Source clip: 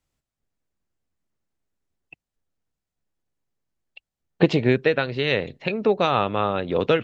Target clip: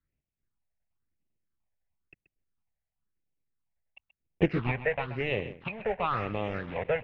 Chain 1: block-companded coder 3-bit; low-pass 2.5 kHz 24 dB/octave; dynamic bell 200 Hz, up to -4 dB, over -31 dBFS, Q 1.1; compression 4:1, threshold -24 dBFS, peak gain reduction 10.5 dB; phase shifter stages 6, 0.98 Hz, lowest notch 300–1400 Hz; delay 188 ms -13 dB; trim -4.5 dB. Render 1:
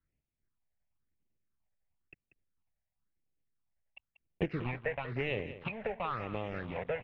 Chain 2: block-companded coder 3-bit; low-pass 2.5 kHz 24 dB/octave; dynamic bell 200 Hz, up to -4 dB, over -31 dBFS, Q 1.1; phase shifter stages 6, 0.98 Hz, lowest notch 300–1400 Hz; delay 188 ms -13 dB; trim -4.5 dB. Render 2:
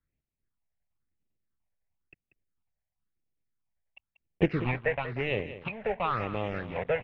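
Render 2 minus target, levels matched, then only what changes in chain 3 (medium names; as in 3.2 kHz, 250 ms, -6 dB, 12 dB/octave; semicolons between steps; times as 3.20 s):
echo 58 ms late
change: delay 130 ms -13 dB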